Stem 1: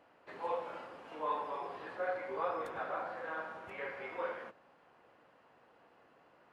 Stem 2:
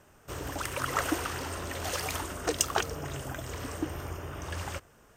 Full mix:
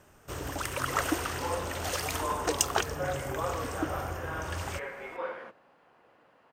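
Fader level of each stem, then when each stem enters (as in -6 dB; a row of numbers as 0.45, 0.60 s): +2.5, +0.5 dB; 1.00, 0.00 s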